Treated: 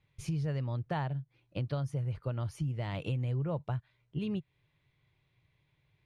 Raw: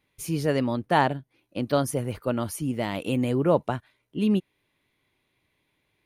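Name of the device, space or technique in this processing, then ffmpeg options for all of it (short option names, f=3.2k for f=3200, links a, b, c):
jukebox: -af "lowpass=5.4k,lowshelf=f=180:t=q:w=3:g=8,acompressor=threshold=-28dB:ratio=5,volume=-4dB"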